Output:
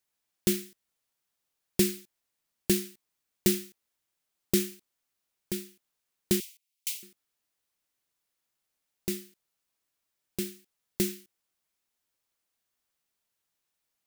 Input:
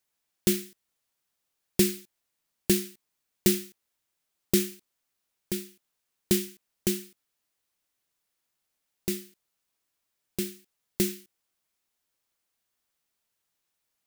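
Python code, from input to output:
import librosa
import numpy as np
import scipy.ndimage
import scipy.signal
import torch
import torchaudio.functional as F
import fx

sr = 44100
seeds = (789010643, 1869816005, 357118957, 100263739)

y = fx.steep_highpass(x, sr, hz=2100.0, slope=72, at=(6.4, 7.03))
y = y * librosa.db_to_amplitude(-2.0)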